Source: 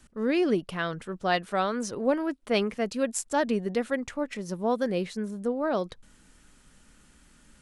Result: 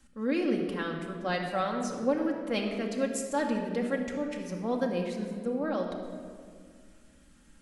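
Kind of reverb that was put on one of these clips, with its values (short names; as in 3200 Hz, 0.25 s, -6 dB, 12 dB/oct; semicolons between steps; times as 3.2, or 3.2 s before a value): shoebox room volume 3400 m³, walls mixed, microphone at 2.2 m; gain -6.5 dB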